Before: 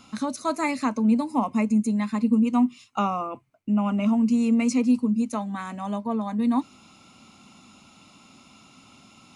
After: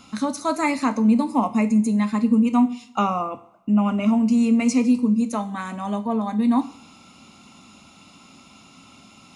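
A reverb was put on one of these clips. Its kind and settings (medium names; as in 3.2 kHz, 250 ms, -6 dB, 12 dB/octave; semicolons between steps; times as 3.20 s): two-slope reverb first 0.47 s, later 1.5 s, from -20 dB, DRR 9.5 dB; trim +3 dB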